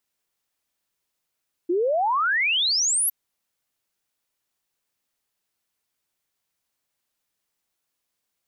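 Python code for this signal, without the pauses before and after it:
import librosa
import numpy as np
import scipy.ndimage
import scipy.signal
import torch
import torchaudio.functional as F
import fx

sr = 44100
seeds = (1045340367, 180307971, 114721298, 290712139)

y = fx.ess(sr, length_s=1.41, from_hz=330.0, to_hz=12000.0, level_db=-19.0)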